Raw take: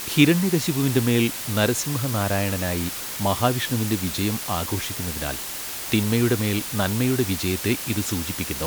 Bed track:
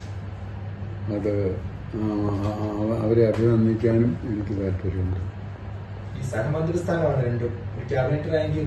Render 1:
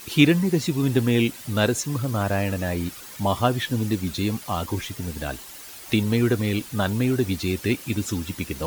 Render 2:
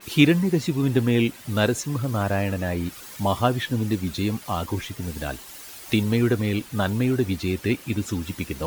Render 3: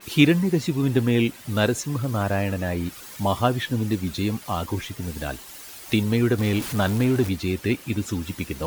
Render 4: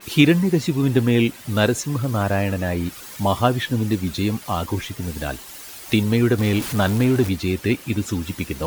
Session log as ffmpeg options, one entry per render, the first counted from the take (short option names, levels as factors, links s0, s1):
-af "afftdn=nr=11:nf=-32"
-af "adynamicequalizer=threshold=0.00794:dfrequency=3400:dqfactor=0.7:tfrequency=3400:tqfactor=0.7:attack=5:release=100:ratio=0.375:range=3:mode=cutabove:tftype=highshelf"
-filter_complex "[0:a]asettb=1/sr,asplit=3[s0][s1][s2];[s0]atrim=end=6.384[s3];[s1]atrim=start=6.38:end=7.29,asetpts=PTS-STARTPTS,afade=t=in:d=0.004:c=qsin,afade=t=out:st=0.906:d=0.004:c=qsin,aeval=exprs='val(0)+0.5*0.0376*sgn(val(0))':c=same[s4];[s2]atrim=start=7.286[s5];[s3][s4]acrossfade=d=0.004:c1=hsin:c2=qsin[s6];[s6][s5]acrossfade=d=0.004:c1=qsin:c2=hsin"
-af "volume=1.41,alimiter=limit=0.794:level=0:latency=1"